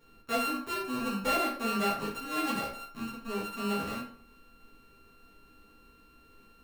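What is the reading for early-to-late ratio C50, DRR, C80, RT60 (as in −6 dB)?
5.5 dB, −7.5 dB, 9.5 dB, 0.50 s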